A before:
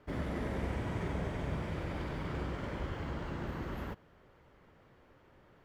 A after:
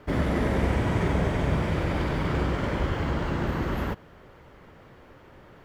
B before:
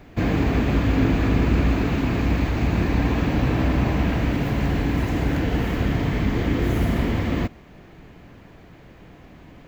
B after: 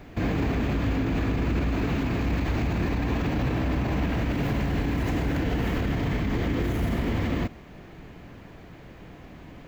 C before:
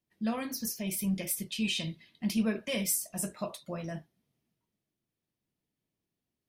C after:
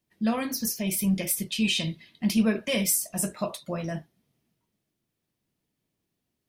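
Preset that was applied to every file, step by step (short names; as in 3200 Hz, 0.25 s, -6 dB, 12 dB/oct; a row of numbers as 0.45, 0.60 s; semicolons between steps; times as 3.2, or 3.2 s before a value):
limiter -19 dBFS; match loudness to -27 LUFS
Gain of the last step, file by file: +11.5, +1.0, +6.0 dB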